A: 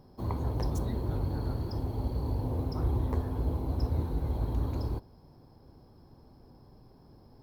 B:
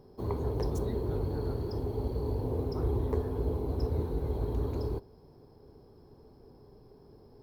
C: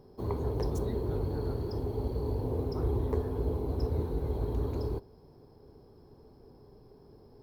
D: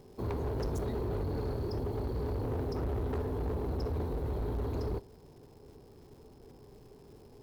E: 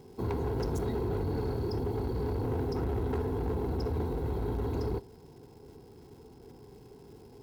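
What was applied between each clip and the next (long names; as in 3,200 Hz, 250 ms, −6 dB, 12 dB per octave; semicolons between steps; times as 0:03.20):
parametric band 420 Hz +12.5 dB 0.38 octaves; level −2 dB
no processing that can be heard
surface crackle 420 per second −56 dBFS; gain into a clipping stage and back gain 31.5 dB; level +1 dB
notch comb filter 600 Hz; level +3.5 dB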